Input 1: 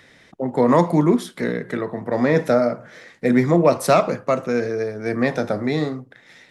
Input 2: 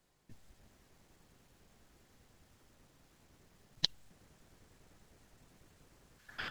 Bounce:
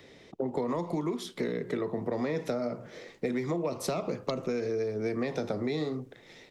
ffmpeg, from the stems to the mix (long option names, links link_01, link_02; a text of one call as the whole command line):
ffmpeg -i stem1.wav -i stem2.wav -filter_complex "[0:a]equalizer=frequency=400:width_type=o:width=0.67:gain=8,equalizer=frequency=1600:width_type=o:width=0.67:gain=-10,equalizer=frequency=10000:width_type=o:width=0.67:gain=-9,acrossover=split=300|910[link_01][link_02][link_03];[link_01]acompressor=threshold=-29dB:ratio=4[link_04];[link_02]acompressor=threshold=-31dB:ratio=4[link_05];[link_03]acompressor=threshold=-31dB:ratio=4[link_06];[link_04][link_05][link_06]amix=inputs=3:normalize=0,volume=-2dB[link_07];[1:a]adelay=450,volume=-6.5dB[link_08];[link_07][link_08]amix=inputs=2:normalize=0,acompressor=threshold=-27dB:ratio=6" out.wav